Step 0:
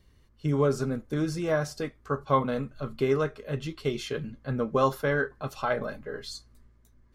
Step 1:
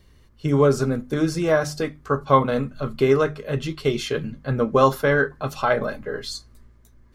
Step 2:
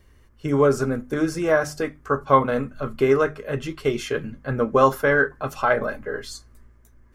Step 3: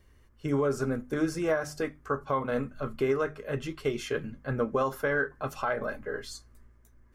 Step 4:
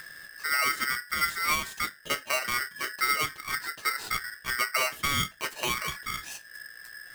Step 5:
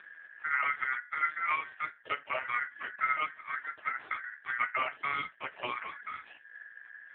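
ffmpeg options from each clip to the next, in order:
-af "bandreject=f=50:t=h:w=6,bandreject=f=100:t=h:w=6,bandreject=f=150:t=h:w=6,bandreject=f=200:t=h:w=6,bandreject=f=250:t=h:w=6,bandreject=f=300:t=h:w=6,volume=7.5dB"
-af "equalizer=f=160:t=o:w=0.67:g=-6,equalizer=f=1.6k:t=o:w=0.67:g=3,equalizer=f=4k:t=o:w=0.67:g=-8"
-af "alimiter=limit=-12.5dB:level=0:latency=1:release=206,volume=-5.5dB"
-af "acompressor=mode=upward:threshold=-33dB:ratio=2.5,aeval=exprs='val(0)*sgn(sin(2*PI*1700*n/s))':c=same"
-filter_complex "[0:a]acrossover=split=250 3100:gain=0.178 1 0.0631[a][b][c];[a][b][c]amix=inputs=3:normalize=0" -ar 8000 -c:a libopencore_amrnb -b:a 4750

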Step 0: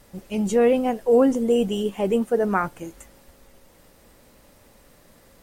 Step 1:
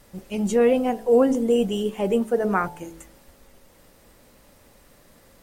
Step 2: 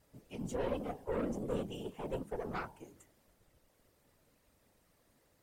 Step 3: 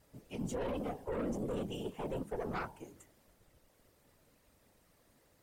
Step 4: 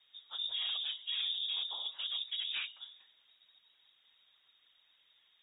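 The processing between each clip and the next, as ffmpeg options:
-af "bandreject=f=54.66:t=h:w=4,bandreject=f=109.32:t=h:w=4,bandreject=f=163.98:t=h:w=4,bandreject=f=218.64:t=h:w=4,bandreject=f=273.3:t=h:w=4,bandreject=f=327.96:t=h:w=4,bandreject=f=382.62:t=h:w=4,bandreject=f=437.28:t=h:w=4,bandreject=f=491.94:t=h:w=4,bandreject=f=546.6:t=h:w=4,bandreject=f=601.26:t=h:w=4,bandreject=f=655.92:t=h:w=4,bandreject=f=710.58:t=h:w=4,bandreject=f=765.24:t=h:w=4,bandreject=f=819.9:t=h:w=4,bandreject=f=874.56:t=h:w=4,bandreject=f=929.22:t=h:w=4,bandreject=f=983.88:t=h:w=4"
-af "aeval=exprs='(tanh(7.94*val(0)+0.7)-tanh(0.7))/7.94':c=same,afftfilt=real='hypot(re,im)*cos(2*PI*random(0))':imag='hypot(re,im)*sin(2*PI*random(1))':win_size=512:overlap=0.75,volume=-7dB"
-af "alimiter=level_in=7.5dB:limit=-24dB:level=0:latency=1:release=15,volume=-7.5dB,volume=2.5dB"
-af "lowpass=f=3.2k:t=q:w=0.5098,lowpass=f=3.2k:t=q:w=0.6013,lowpass=f=3.2k:t=q:w=0.9,lowpass=f=3.2k:t=q:w=2.563,afreqshift=-3800"

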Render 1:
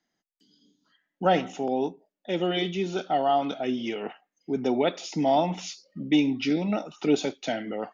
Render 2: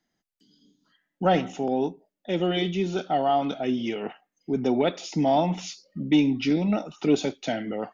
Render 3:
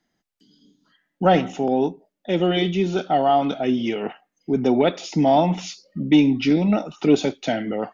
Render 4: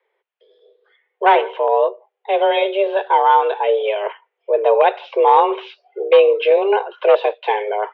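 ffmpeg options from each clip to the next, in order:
-af "lowshelf=f=150:g=10,acontrast=41,volume=-5.5dB"
-af "highshelf=f=5.8k:g=-5,volume=5dB"
-af "aeval=exprs='0.355*(abs(mod(val(0)/0.355+3,4)-2)-1)':c=same,highpass=f=200:t=q:w=0.5412,highpass=f=200:t=q:w=1.307,lowpass=f=3k:t=q:w=0.5176,lowpass=f=3k:t=q:w=0.7071,lowpass=f=3k:t=q:w=1.932,afreqshift=200,volume=5dB"

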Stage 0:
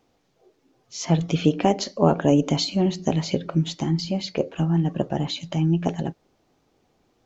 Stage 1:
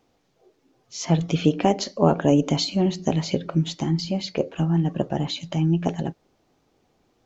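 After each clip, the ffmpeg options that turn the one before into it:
-af anull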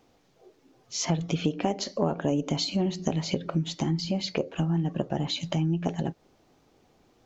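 -af "acompressor=threshold=-29dB:ratio=3,volume=3dB"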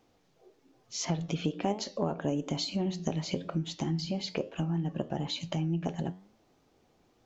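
-af "flanger=delay=8.8:depth=4.7:regen=86:speed=1.1:shape=triangular"

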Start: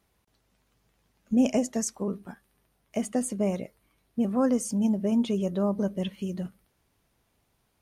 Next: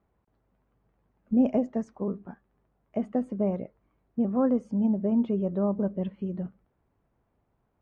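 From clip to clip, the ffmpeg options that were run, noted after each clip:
-af "lowpass=1.2k"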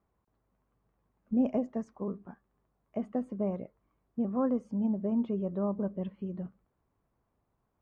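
-af "equalizer=f=1.1k:t=o:w=0.3:g=5,volume=-5dB"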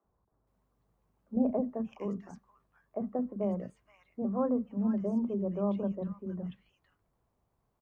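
-filter_complex "[0:a]acrossover=split=270|1600[a][b][c];[a]adelay=40[d];[c]adelay=470[e];[d][b][e]amix=inputs=3:normalize=0,volume=1.5dB"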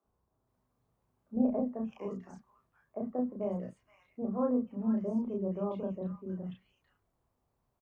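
-filter_complex "[0:a]asplit=2[a][b];[b]adelay=32,volume=-2.5dB[c];[a][c]amix=inputs=2:normalize=0,volume=-3.5dB"

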